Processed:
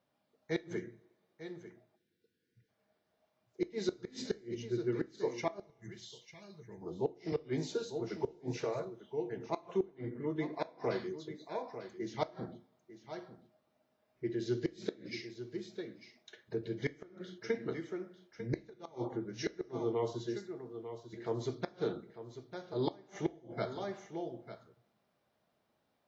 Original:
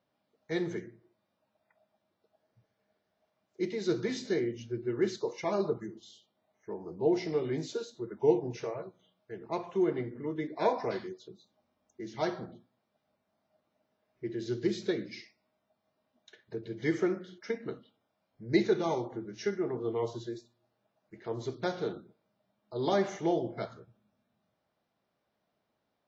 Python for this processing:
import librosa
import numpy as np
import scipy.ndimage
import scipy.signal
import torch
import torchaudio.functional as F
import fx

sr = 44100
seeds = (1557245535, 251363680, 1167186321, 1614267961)

p1 = x + fx.echo_single(x, sr, ms=897, db=-13.5, dry=0)
p2 = fx.gate_flip(p1, sr, shuts_db=-21.0, range_db=-32)
p3 = fx.rider(p2, sr, range_db=3, speed_s=0.5)
p4 = p2 + (p3 * librosa.db_to_amplitude(-1.0))
p5 = fx.spec_erase(p4, sr, start_s=1.96, length_s=0.73, low_hz=530.0, high_hz=1400.0)
p6 = fx.band_shelf(p5, sr, hz=560.0, db=-14.5, octaves=2.9, at=(5.65, 6.81), fade=0.02)
p7 = fx.rev_double_slope(p6, sr, seeds[0], early_s=0.28, late_s=1.7, knee_db=-20, drr_db=14.0)
p8 = fx.band_squash(p7, sr, depth_pct=40, at=(7.32, 8.85))
y = p8 * librosa.db_to_amplitude(-5.5)